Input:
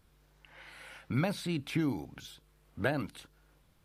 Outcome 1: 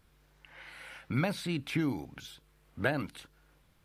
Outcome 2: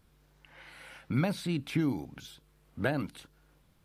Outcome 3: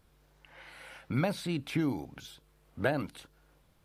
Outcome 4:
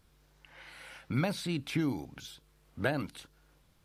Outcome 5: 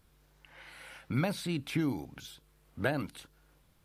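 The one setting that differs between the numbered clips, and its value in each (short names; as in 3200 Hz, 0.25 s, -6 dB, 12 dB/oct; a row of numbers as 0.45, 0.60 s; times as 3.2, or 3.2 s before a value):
bell, frequency: 2000, 200, 610, 5600, 16000 Hz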